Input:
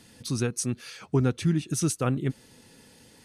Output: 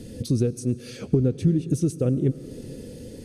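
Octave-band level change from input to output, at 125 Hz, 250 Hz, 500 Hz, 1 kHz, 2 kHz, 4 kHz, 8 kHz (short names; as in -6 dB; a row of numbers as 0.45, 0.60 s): +4.0 dB, +4.5 dB, +4.5 dB, under -10 dB, n/a, -5.0 dB, -7.5 dB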